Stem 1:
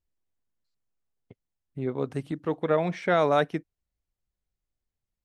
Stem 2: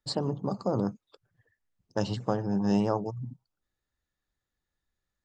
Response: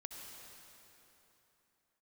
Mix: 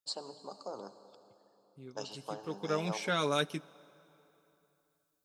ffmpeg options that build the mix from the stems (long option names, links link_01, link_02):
-filter_complex "[0:a]equalizer=frequency=720:width_type=o:width=0.67:gain=-10,flanger=delay=6.5:depth=1.1:regen=-40:speed=0.39:shape=triangular,crystalizer=i=6.5:c=0,volume=-4dB,afade=type=in:start_time=2.17:duration=0.7:silence=0.237137,asplit=2[link_01][link_02];[link_02]volume=-17.5dB[link_03];[1:a]highpass=520,highshelf=frequency=2900:gain=8,volume=-12dB,asplit=2[link_04][link_05];[link_05]volume=-3.5dB[link_06];[2:a]atrim=start_sample=2205[link_07];[link_03][link_06]amix=inputs=2:normalize=0[link_08];[link_08][link_07]afir=irnorm=-1:irlink=0[link_09];[link_01][link_04][link_09]amix=inputs=3:normalize=0,highpass=63,equalizer=frequency=1900:width=4.9:gain=-11.5"